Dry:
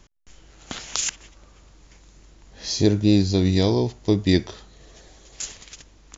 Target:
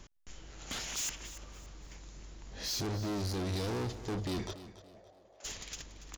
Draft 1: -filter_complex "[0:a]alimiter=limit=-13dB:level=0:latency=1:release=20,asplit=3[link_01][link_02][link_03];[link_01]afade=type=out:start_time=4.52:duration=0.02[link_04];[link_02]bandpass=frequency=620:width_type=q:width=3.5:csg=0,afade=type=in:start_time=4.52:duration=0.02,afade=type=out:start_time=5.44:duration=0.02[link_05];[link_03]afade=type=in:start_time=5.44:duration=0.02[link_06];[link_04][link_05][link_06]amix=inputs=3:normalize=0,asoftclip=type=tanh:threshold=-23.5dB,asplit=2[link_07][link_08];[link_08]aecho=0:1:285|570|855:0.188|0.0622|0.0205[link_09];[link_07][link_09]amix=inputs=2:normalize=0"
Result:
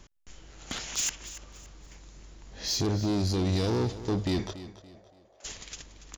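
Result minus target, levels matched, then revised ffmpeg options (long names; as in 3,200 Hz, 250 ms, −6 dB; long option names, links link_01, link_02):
soft clipping: distortion −6 dB
-filter_complex "[0:a]alimiter=limit=-13dB:level=0:latency=1:release=20,asplit=3[link_01][link_02][link_03];[link_01]afade=type=out:start_time=4.52:duration=0.02[link_04];[link_02]bandpass=frequency=620:width_type=q:width=3.5:csg=0,afade=type=in:start_time=4.52:duration=0.02,afade=type=out:start_time=5.44:duration=0.02[link_05];[link_03]afade=type=in:start_time=5.44:duration=0.02[link_06];[link_04][link_05][link_06]amix=inputs=3:normalize=0,asoftclip=type=tanh:threshold=-33.5dB,asplit=2[link_07][link_08];[link_08]aecho=0:1:285|570|855:0.188|0.0622|0.0205[link_09];[link_07][link_09]amix=inputs=2:normalize=0"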